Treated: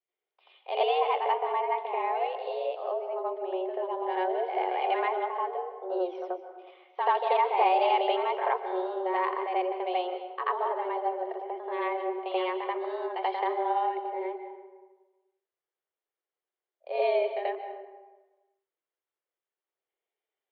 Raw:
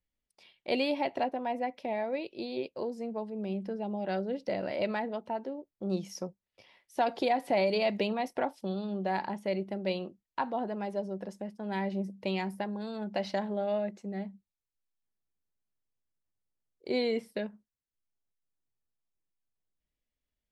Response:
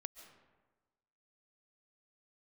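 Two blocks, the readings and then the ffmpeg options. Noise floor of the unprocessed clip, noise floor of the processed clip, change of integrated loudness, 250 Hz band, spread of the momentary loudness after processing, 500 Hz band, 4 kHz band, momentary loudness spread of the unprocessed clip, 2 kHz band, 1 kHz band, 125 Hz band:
under -85 dBFS, under -85 dBFS, +4.0 dB, no reading, 10 LU, +3.5 dB, +0.5 dB, 10 LU, +2.5 dB, +9.0 dB, under -40 dB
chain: -filter_complex "[0:a]bandreject=f=2400:w=13,asplit=2[s0][s1];[1:a]atrim=start_sample=2205,highshelf=f=5600:g=-7,adelay=84[s2];[s1][s2]afir=irnorm=-1:irlink=0,volume=3.55[s3];[s0][s3]amix=inputs=2:normalize=0,highpass=f=180:t=q:w=0.5412,highpass=f=180:t=q:w=1.307,lowpass=f=3200:t=q:w=0.5176,lowpass=f=3200:t=q:w=0.7071,lowpass=f=3200:t=q:w=1.932,afreqshift=180,volume=0.708"

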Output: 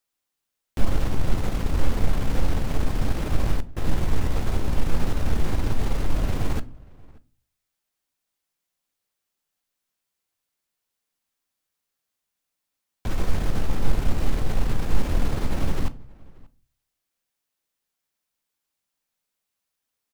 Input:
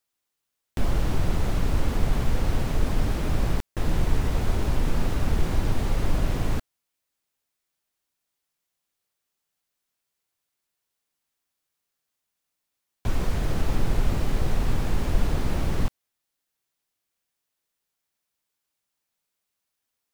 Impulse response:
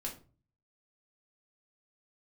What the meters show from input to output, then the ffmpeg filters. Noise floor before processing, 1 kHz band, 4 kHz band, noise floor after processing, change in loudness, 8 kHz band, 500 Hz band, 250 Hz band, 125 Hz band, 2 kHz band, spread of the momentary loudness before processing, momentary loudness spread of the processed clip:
-82 dBFS, 0.0 dB, -0.5 dB, -83 dBFS, -0.5 dB, -0.5 dB, -0.5 dB, 0.0 dB, -0.5 dB, -0.5 dB, 3 LU, 4 LU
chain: -filter_complex "[0:a]aeval=exprs='0.398*(cos(1*acos(clip(val(0)/0.398,-1,1)))-cos(1*PI/2))+0.0224*(cos(6*acos(clip(val(0)/0.398,-1,1)))-cos(6*PI/2))':c=same,asplit=2[s0][s1];[s1]adelay=583.1,volume=0.0631,highshelf=f=4000:g=-13.1[s2];[s0][s2]amix=inputs=2:normalize=0,asplit=2[s3][s4];[1:a]atrim=start_sample=2205[s5];[s4][s5]afir=irnorm=-1:irlink=0,volume=0.376[s6];[s3][s6]amix=inputs=2:normalize=0,volume=0.75"

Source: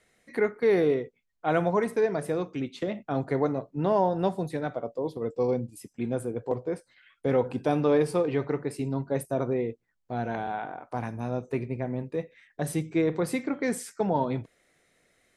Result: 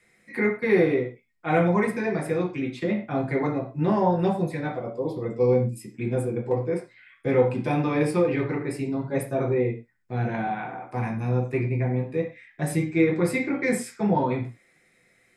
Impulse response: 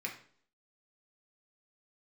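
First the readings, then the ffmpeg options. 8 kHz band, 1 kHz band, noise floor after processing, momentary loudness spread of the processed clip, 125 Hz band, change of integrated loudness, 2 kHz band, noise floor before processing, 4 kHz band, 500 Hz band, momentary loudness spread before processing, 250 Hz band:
+1.5 dB, +2.0 dB, -63 dBFS, 9 LU, +6.5 dB, +3.5 dB, +6.5 dB, -74 dBFS, +1.0 dB, +2.0 dB, 11 LU, +4.5 dB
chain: -filter_complex "[1:a]atrim=start_sample=2205,afade=t=out:st=0.18:d=0.01,atrim=end_sample=8379[s0];[0:a][s0]afir=irnorm=-1:irlink=0,volume=1.5"

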